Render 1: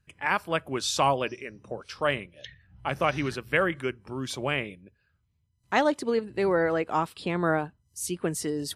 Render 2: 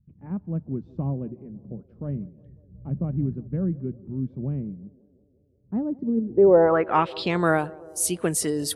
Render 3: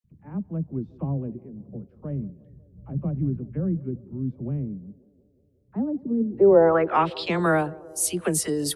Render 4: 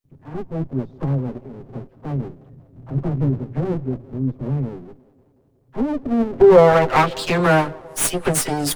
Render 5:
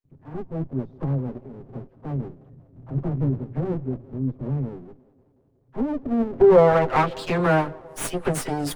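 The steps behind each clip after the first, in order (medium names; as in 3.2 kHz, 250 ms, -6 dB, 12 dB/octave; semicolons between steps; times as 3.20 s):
low-pass sweep 200 Hz -> 11 kHz, 6.15–7.51 s; band-passed feedback delay 182 ms, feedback 75%, band-pass 460 Hz, level -20.5 dB; trim +4 dB
phase dispersion lows, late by 43 ms, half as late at 560 Hz
comb filter that takes the minimum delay 7.6 ms; trim +6.5 dB
treble shelf 2.8 kHz -8.5 dB; trim -3.5 dB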